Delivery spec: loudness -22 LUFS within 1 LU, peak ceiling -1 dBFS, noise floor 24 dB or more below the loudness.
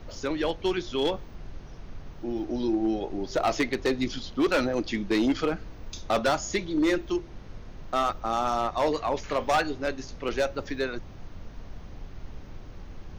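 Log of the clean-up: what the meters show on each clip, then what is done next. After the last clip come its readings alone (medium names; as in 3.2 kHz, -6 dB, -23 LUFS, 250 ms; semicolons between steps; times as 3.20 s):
clipped samples 1.1%; clipping level -18.5 dBFS; noise floor -44 dBFS; noise floor target -52 dBFS; loudness -28.0 LUFS; peak level -18.5 dBFS; loudness target -22.0 LUFS
-> clip repair -18.5 dBFS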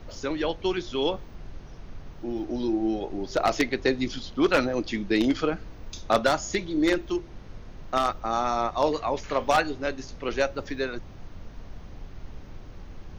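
clipped samples 0.0%; noise floor -44 dBFS; noise floor target -51 dBFS
-> noise print and reduce 7 dB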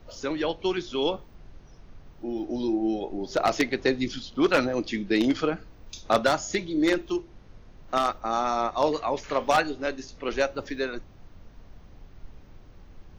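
noise floor -51 dBFS; loudness -27.0 LUFS; peak level -9.5 dBFS; loudness target -22.0 LUFS
-> trim +5 dB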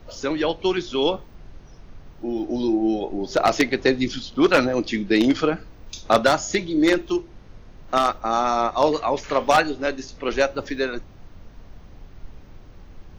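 loudness -22.0 LUFS; peak level -4.5 dBFS; noise floor -46 dBFS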